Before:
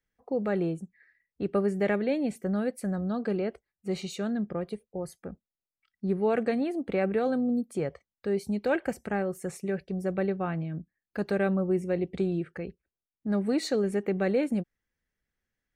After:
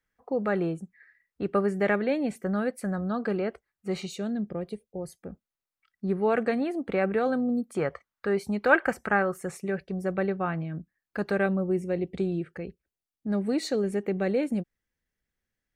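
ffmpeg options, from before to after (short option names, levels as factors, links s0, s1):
-af "asetnsamples=n=441:p=0,asendcmd='4.06 equalizer g -5;5.31 equalizer g 6;7.75 equalizer g 14.5;9.41 equalizer g 5.5;11.46 equalizer g -1.5',equalizer=f=1300:t=o:w=1.4:g=7"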